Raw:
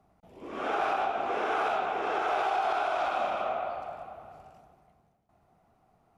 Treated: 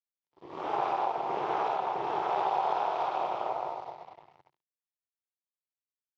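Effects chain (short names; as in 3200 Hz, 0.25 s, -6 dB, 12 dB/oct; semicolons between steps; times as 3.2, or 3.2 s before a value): crossover distortion -47.5 dBFS; AM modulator 220 Hz, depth 60%; speaker cabinet 110–5600 Hz, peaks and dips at 140 Hz +6 dB, 230 Hz -9 dB, 360 Hz +6 dB, 910 Hz +10 dB, 1500 Hz -8 dB, 2500 Hz -4 dB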